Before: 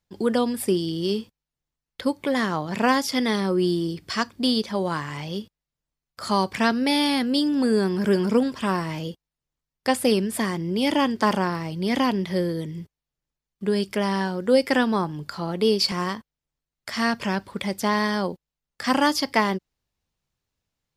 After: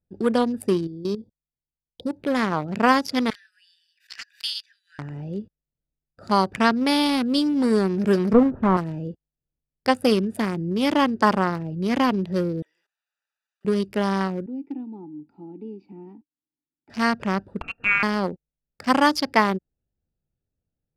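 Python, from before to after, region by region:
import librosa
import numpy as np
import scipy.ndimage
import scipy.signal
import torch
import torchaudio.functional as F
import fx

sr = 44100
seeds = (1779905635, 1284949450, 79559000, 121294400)

y = fx.chain(x, sr, fx.brickwall_bandstop(low_hz=1000.0, high_hz=3200.0),
    fx.level_steps(step_db=12), at=(0.87, 2.13))
y = fx.chain(y, sr, fx.steep_highpass(hz=1600.0, slope=96),
    fx.pre_swell(db_per_s=140.0), at=(3.3, 4.99))
y = fx.chain(y, sr, fx.delta_mod(bps=32000, step_db=-34.0),
    fx.lowpass_res(hz=1200.0, q=1.5),
    fx.tilt_eq(slope=-2.0), at=(8.33, 8.77))
y = fx.chain(y, sr, fx.highpass(hz=1200.0, slope=24),
    fx.env_flatten(amount_pct=50), at=(12.62, 13.65))
y = fx.chain(y, sr, fx.vowel_filter(vowel='u'),
    fx.band_squash(depth_pct=40), at=(14.46, 16.9))
y = fx.chain(y, sr, fx.brickwall_highpass(low_hz=470.0),
    fx.freq_invert(carrier_hz=3300),
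    fx.comb(ms=4.4, depth=0.5), at=(17.61, 18.03))
y = fx.wiener(y, sr, points=41)
y = fx.dynamic_eq(y, sr, hz=1200.0, q=1.5, threshold_db=-38.0, ratio=4.0, max_db=4)
y = F.gain(torch.from_numpy(y), 1.5).numpy()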